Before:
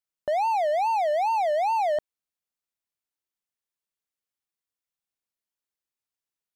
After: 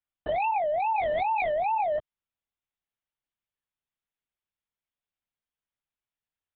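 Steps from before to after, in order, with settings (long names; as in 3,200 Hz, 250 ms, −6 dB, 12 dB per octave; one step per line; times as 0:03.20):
dynamic equaliser 660 Hz, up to −3 dB, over −37 dBFS, Q 0.89
linear-prediction vocoder at 8 kHz whisper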